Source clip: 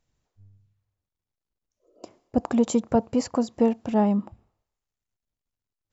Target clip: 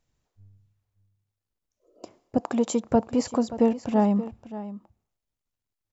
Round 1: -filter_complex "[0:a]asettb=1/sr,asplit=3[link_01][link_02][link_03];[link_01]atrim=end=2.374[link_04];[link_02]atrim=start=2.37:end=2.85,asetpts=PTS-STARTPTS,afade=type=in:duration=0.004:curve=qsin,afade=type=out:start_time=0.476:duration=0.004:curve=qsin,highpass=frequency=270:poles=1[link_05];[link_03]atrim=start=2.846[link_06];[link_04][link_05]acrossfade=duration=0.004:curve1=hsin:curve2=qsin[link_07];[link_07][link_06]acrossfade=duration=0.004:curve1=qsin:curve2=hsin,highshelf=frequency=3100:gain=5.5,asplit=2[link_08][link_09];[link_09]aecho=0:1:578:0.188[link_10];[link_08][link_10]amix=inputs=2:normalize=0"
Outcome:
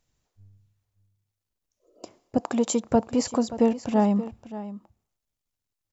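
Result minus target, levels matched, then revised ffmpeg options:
8,000 Hz band +4.5 dB
-filter_complex "[0:a]asettb=1/sr,asplit=3[link_01][link_02][link_03];[link_01]atrim=end=2.374[link_04];[link_02]atrim=start=2.37:end=2.85,asetpts=PTS-STARTPTS,afade=type=in:duration=0.004:curve=qsin,afade=type=out:start_time=0.476:duration=0.004:curve=qsin,highpass=frequency=270:poles=1[link_05];[link_03]atrim=start=2.846[link_06];[link_04][link_05]acrossfade=duration=0.004:curve1=hsin:curve2=qsin[link_07];[link_07][link_06]acrossfade=duration=0.004:curve1=qsin:curve2=hsin,asplit=2[link_08][link_09];[link_09]aecho=0:1:578:0.188[link_10];[link_08][link_10]amix=inputs=2:normalize=0"

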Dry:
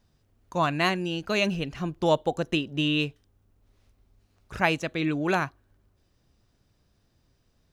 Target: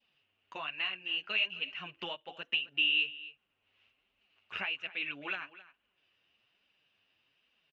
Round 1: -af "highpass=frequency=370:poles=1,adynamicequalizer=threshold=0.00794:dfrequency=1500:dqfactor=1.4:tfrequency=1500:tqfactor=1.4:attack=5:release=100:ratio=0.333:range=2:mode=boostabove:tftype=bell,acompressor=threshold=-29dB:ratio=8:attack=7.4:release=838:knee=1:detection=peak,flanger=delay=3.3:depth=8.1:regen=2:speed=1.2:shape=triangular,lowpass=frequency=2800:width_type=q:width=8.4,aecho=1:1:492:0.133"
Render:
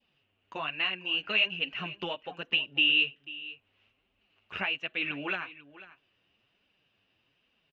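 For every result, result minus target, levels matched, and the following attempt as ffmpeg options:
echo 229 ms late; downward compressor: peak gain reduction −4 dB; 500 Hz band +3.5 dB
-af "highpass=frequency=370:poles=1,adynamicequalizer=threshold=0.00794:dfrequency=1500:dqfactor=1.4:tfrequency=1500:tqfactor=1.4:attack=5:release=100:ratio=0.333:range=2:mode=boostabove:tftype=bell,acompressor=threshold=-29dB:ratio=8:attack=7.4:release=838:knee=1:detection=peak,flanger=delay=3.3:depth=8.1:regen=2:speed=1.2:shape=triangular,lowpass=frequency=2800:width_type=q:width=8.4,aecho=1:1:263:0.133"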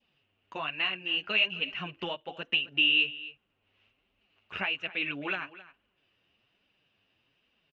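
downward compressor: peak gain reduction −4 dB; 500 Hz band +3.5 dB
-af "highpass=frequency=370:poles=1,adynamicequalizer=threshold=0.00794:dfrequency=1500:dqfactor=1.4:tfrequency=1500:tqfactor=1.4:attack=5:release=100:ratio=0.333:range=2:mode=boostabove:tftype=bell,acompressor=threshold=-35.5dB:ratio=8:attack=7.4:release=838:knee=1:detection=peak,flanger=delay=3.3:depth=8.1:regen=2:speed=1.2:shape=triangular,lowpass=frequency=2800:width_type=q:width=8.4,aecho=1:1:263:0.133"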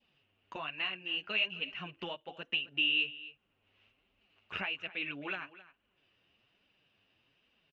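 500 Hz band +3.5 dB
-af "highpass=frequency=1100:poles=1,adynamicequalizer=threshold=0.00794:dfrequency=1500:dqfactor=1.4:tfrequency=1500:tqfactor=1.4:attack=5:release=100:ratio=0.333:range=2:mode=boostabove:tftype=bell,acompressor=threshold=-35.5dB:ratio=8:attack=7.4:release=838:knee=1:detection=peak,flanger=delay=3.3:depth=8.1:regen=2:speed=1.2:shape=triangular,lowpass=frequency=2800:width_type=q:width=8.4,aecho=1:1:263:0.133"

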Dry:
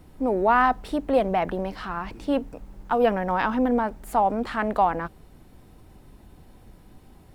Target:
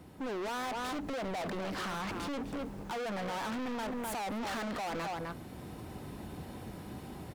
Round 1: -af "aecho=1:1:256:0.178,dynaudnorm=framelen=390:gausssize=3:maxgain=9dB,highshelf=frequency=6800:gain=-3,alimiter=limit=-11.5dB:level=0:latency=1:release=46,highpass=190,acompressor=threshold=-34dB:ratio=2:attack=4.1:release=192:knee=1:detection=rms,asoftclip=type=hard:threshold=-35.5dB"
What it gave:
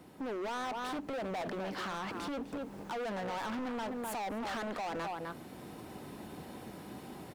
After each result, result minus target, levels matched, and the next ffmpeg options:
downward compressor: peak gain reduction +5.5 dB; 125 Hz band −3.0 dB
-af "aecho=1:1:256:0.178,dynaudnorm=framelen=390:gausssize=3:maxgain=9dB,highshelf=frequency=6800:gain=-3,alimiter=limit=-11.5dB:level=0:latency=1:release=46,highpass=190,acompressor=threshold=-22.5dB:ratio=2:attack=4.1:release=192:knee=1:detection=rms,asoftclip=type=hard:threshold=-35.5dB"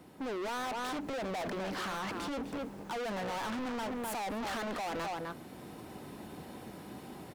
125 Hz band −3.5 dB
-af "aecho=1:1:256:0.178,dynaudnorm=framelen=390:gausssize=3:maxgain=9dB,highshelf=frequency=6800:gain=-3,alimiter=limit=-11.5dB:level=0:latency=1:release=46,highpass=95,acompressor=threshold=-22.5dB:ratio=2:attack=4.1:release=192:knee=1:detection=rms,asoftclip=type=hard:threshold=-35.5dB"

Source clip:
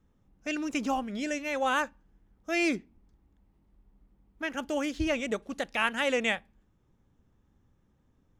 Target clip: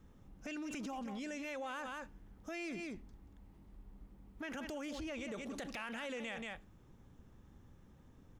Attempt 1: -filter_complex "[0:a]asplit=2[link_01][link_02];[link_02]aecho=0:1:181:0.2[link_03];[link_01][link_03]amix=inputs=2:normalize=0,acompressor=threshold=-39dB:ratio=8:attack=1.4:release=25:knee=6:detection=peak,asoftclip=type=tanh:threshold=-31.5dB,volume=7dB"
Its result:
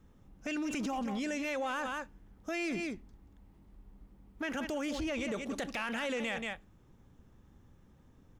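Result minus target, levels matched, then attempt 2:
downward compressor: peak gain reduction −8.5 dB
-filter_complex "[0:a]asplit=2[link_01][link_02];[link_02]aecho=0:1:181:0.2[link_03];[link_01][link_03]amix=inputs=2:normalize=0,acompressor=threshold=-48.5dB:ratio=8:attack=1.4:release=25:knee=6:detection=peak,asoftclip=type=tanh:threshold=-31.5dB,volume=7dB"

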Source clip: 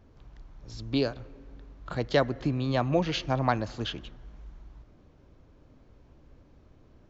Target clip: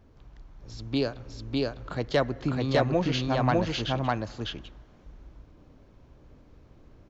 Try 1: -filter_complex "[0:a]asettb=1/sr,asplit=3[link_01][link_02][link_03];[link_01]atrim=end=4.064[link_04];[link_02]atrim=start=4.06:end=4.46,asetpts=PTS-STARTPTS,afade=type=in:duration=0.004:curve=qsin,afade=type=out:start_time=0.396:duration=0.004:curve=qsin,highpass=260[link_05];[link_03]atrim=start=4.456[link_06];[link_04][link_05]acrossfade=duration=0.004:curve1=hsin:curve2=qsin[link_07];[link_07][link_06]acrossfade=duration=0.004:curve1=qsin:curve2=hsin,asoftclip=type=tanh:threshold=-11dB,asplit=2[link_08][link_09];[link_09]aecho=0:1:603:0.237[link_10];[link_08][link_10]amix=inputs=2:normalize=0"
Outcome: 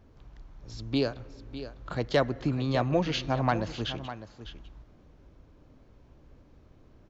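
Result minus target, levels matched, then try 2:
echo-to-direct −11.5 dB
-filter_complex "[0:a]asettb=1/sr,asplit=3[link_01][link_02][link_03];[link_01]atrim=end=4.064[link_04];[link_02]atrim=start=4.06:end=4.46,asetpts=PTS-STARTPTS,afade=type=in:duration=0.004:curve=qsin,afade=type=out:start_time=0.396:duration=0.004:curve=qsin,highpass=260[link_05];[link_03]atrim=start=4.456[link_06];[link_04][link_05]acrossfade=duration=0.004:curve1=hsin:curve2=qsin[link_07];[link_07][link_06]acrossfade=duration=0.004:curve1=qsin:curve2=hsin,asoftclip=type=tanh:threshold=-11dB,asplit=2[link_08][link_09];[link_09]aecho=0:1:603:0.891[link_10];[link_08][link_10]amix=inputs=2:normalize=0"

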